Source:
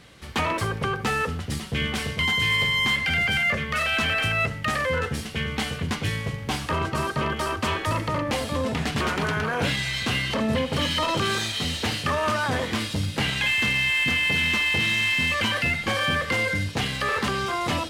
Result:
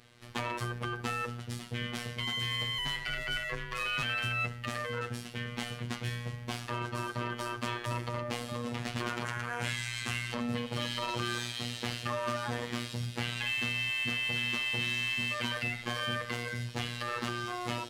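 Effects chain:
phases set to zero 120 Hz
0:02.78–0:04.03: frequency shifter −96 Hz
0:09.25–0:10.32: graphic EQ with 10 bands 250 Hz −4 dB, 500 Hz −5 dB, 2,000 Hz +4 dB, 4,000 Hz −4 dB, 8,000 Hz +7 dB
level −7.5 dB

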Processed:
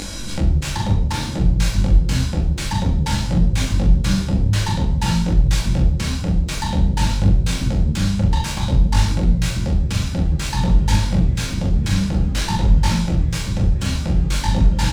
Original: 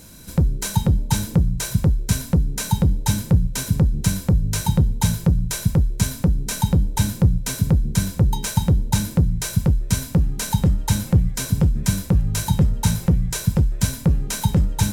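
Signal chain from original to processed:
phase distortion by the signal itself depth 0.51 ms
high-frequency loss of the air 91 metres
brickwall limiter −13 dBFS, peak gain reduction 7.5 dB
double-tracking delay 42 ms −5 dB
convolution reverb RT60 0.70 s, pre-delay 4 ms, DRR 1.5 dB
upward compression, threshold −20 dBFS
high-shelf EQ 2,300 Hz +9 dB
micro pitch shift up and down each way 19 cents
level +3.5 dB

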